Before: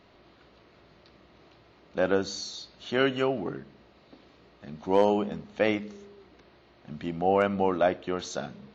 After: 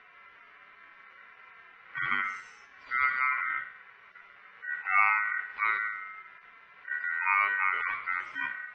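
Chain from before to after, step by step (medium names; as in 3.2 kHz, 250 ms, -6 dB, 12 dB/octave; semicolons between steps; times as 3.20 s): harmonic-percussive separation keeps harmonic; Bessel low-pass 900 Hz, order 2; de-hum 78.16 Hz, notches 9; in parallel at -2.5 dB: compressor with a negative ratio -39 dBFS, ratio -1; on the sum: ring modulator 1.7 kHz; trim +2 dB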